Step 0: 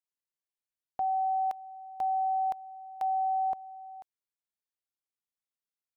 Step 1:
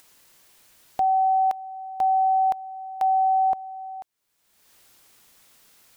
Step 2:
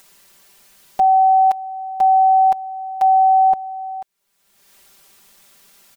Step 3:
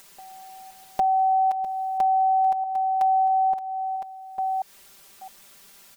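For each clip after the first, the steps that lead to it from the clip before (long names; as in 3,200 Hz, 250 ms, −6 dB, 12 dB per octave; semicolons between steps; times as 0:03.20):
upward compression, threshold −42 dBFS; level +8.5 dB
comb filter 5.1 ms, depth 98%; level +2.5 dB
delay that plays each chunk backwards 660 ms, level −11.5 dB; downward compressor 2.5 to 1, threshold −24 dBFS, peak gain reduction 9.5 dB; backwards echo 807 ms −23.5 dB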